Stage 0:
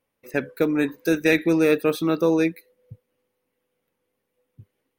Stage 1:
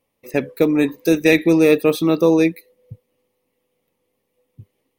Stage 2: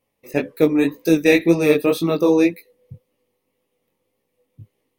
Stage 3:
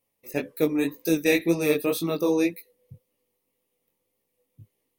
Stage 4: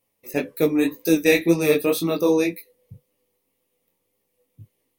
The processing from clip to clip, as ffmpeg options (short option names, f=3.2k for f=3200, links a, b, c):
-af "equalizer=f=1.5k:t=o:w=0.29:g=-14.5,volume=5.5dB"
-af "flanger=delay=17:depth=5.9:speed=1.9,volume=2dB"
-af "highshelf=f=5.7k:g=11,volume=-7.5dB"
-af "flanger=delay=9.7:depth=2.1:regen=-52:speed=0.93:shape=triangular,volume=8dB"